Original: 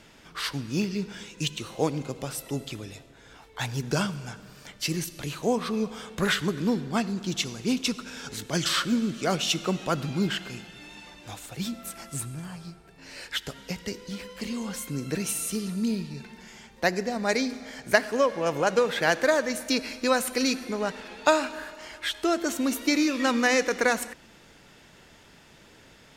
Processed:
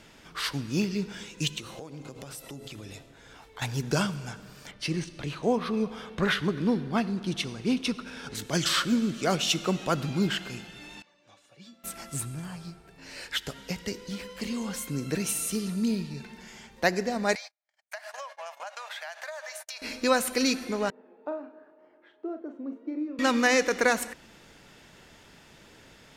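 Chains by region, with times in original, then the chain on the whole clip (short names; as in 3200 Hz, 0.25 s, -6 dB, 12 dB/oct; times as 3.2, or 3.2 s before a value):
1.59–3.62 notches 60/120/180/240/300/360/420 Hz + compressor 12:1, threshold -37 dBFS
4.71–8.35 careless resampling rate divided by 3×, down filtered, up hold + air absorption 84 m
11.02–11.84 BPF 140–5400 Hz + resonator 570 Hz, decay 0.23 s, mix 90%
17.35–19.82 Chebyshev high-pass 610 Hz, order 6 + gate -39 dBFS, range -51 dB + compressor 12:1, threshold -35 dBFS
20.9–23.19 ladder band-pass 400 Hz, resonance 30% + doubler 40 ms -8 dB
whole clip: dry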